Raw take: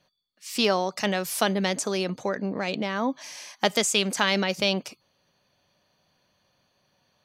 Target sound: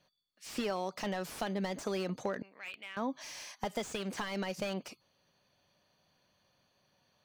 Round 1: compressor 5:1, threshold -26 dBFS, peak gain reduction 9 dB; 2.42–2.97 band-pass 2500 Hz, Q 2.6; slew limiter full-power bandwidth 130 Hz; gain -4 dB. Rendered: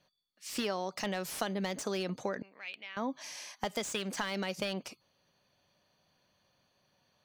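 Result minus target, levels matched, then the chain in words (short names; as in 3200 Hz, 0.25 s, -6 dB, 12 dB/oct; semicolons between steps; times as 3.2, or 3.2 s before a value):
slew limiter: distortion -5 dB
compressor 5:1, threshold -26 dBFS, peak gain reduction 9 dB; 2.42–2.97 band-pass 2500 Hz, Q 2.6; slew limiter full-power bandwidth 53 Hz; gain -4 dB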